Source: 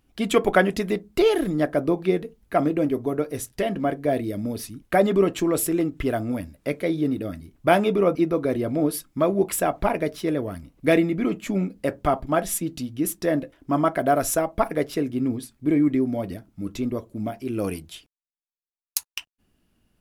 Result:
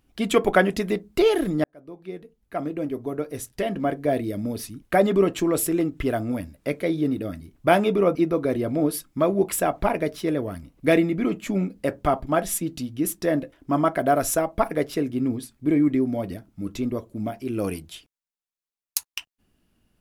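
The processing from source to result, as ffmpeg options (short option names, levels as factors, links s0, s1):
-filter_complex "[0:a]asplit=2[s0][s1];[s0]atrim=end=1.64,asetpts=PTS-STARTPTS,afade=t=out:st=1.636:d=0.004:c=hsin[s2];[s1]atrim=start=1.64,asetpts=PTS-STARTPTS,afade=t=in:d=2.33[s3];[s2][s3]concat=n=2:v=0:a=1"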